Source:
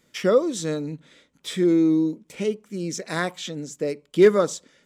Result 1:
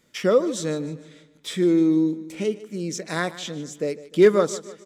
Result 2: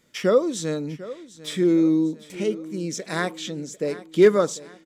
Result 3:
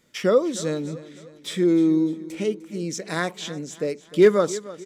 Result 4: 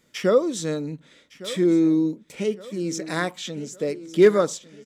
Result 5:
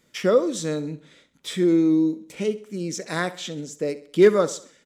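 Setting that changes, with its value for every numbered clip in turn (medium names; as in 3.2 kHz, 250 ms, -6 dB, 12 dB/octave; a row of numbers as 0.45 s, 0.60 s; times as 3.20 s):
feedback delay, time: 151 ms, 747 ms, 302 ms, 1160 ms, 66 ms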